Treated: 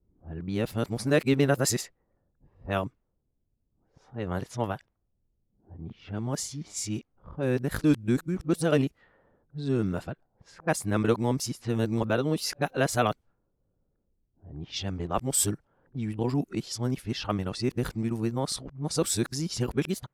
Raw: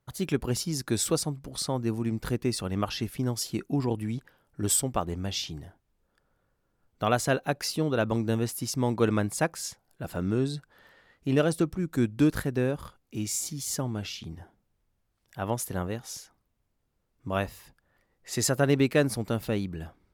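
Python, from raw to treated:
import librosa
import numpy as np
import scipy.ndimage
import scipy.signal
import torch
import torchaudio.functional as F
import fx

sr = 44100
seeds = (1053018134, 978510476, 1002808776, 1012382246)

y = np.flip(x).copy()
y = fx.env_lowpass(y, sr, base_hz=390.0, full_db=-25.5)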